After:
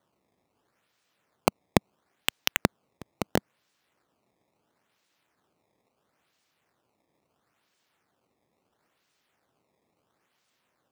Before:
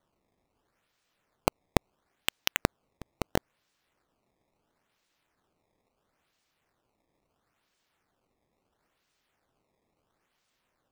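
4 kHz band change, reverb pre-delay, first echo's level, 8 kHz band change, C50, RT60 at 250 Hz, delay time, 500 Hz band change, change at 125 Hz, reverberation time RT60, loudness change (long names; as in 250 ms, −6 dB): +2.5 dB, no reverb audible, no echo audible, +2.5 dB, no reverb audible, no reverb audible, no echo audible, +2.5 dB, +2.0 dB, no reverb audible, +2.5 dB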